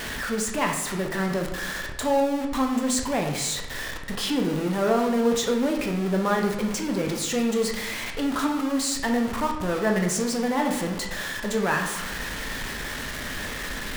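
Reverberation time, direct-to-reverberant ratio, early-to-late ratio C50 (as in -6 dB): 0.95 s, 2.0 dB, 5.5 dB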